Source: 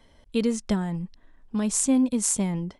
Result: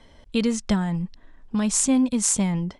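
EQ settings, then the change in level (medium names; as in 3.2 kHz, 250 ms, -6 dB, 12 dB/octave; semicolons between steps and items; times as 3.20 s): low-pass 8.4 kHz 12 dB/octave; dynamic bell 380 Hz, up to -7 dB, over -37 dBFS, Q 0.99; +5.5 dB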